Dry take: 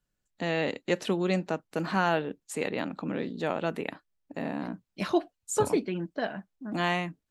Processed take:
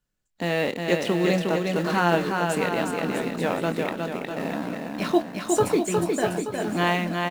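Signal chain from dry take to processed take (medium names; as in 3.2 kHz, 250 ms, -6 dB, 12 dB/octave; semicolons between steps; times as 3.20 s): in parallel at -9 dB: word length cut 6-bit, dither none; on the sum: doubling 23 ms -11 dB; bouncing-ball echo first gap 360 ms, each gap 0.8×, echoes 5; trim +1 dB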